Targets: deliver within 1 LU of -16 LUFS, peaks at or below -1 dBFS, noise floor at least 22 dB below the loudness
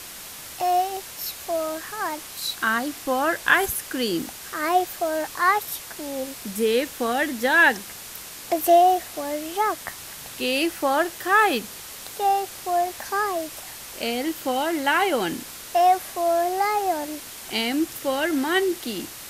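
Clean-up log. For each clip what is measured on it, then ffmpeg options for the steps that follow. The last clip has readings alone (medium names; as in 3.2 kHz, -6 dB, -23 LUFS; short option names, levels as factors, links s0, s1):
noise floor -39 dBFS; noise floor target -46 dBFS; loudness -23.5 LUFS; peak level -3.5 dBFS; loudness target -16.0 LUFS
-> -af "afftdn=nr=7:nf=-39"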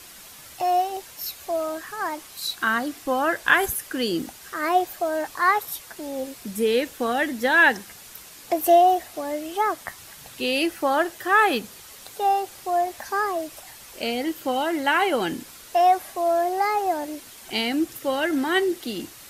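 noise floor -45 dBFS; noise floor target -46 dBFS
-> -af "afftdn=nr=6:nf=-45"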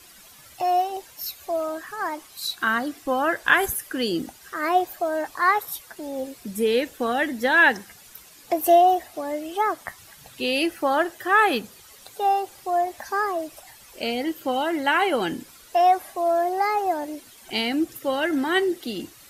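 noise floor -49 dBFS; loudness -23.5 LUFS; peak level -3.5 dBFS; loudness target -16.0 LUFS
-> -af "volume=2.37,alimiter=limit=0.891:level=0:latency=1"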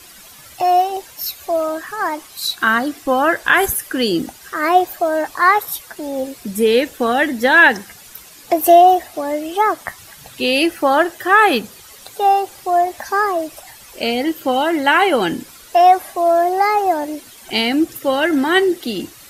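loudness -16.5 LUFS; peak level -1.0 dBFS; noise floor -42 dBFS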